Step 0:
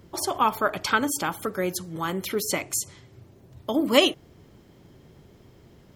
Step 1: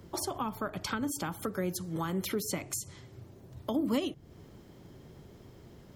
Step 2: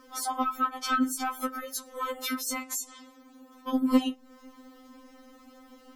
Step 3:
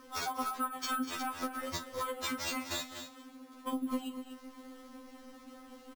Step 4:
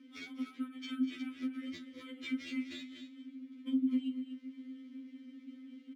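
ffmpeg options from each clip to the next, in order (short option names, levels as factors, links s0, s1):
-filter_complex "[0:a]equalizer=f=2500:w=1.5:g=-2.5,acrossover=split=240[s0][s1];[s1]acompressor=threshold=0.0224:ratio=10[s2];[s0][s2]amix=inputs=2:normalize=0"
-af "equalizer=f=1200:t=o:w=0.46:g=9,asoftclip=type=tanh:threshold=0.0944,afftfilt=real='re*3.46*eq(mod(b,12),0)':imag='im*3.46*eq(mod(b,12),0)':win_size=2048:overlap=0.75,volume=2"
-af "acompressor=threshold=0.02:ratio=4,acrusher=samples=4:mix=1:aa=0.000001,aecho=1:1:41|201|244:0.2|0.141|0.316"
-filter_complex "[0:a]asplit=3[s0][s1][s2];[s0]bandpass=f=270:t=q:w=8,volume=1[s3];[s1]bandpass=f=2290:t=q:w=8,volume=0.501[s4];[s2]bandpass=f=3010:t=q:w=8,volume=0.355[s5];[s3][s4][s5]amix=inputs=3:normalize=0,volume=2"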